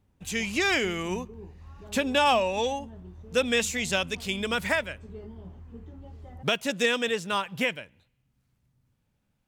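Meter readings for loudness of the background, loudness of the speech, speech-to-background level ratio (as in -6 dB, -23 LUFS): -46.0 LUFS, -27.0 LUFS, 19.0 dB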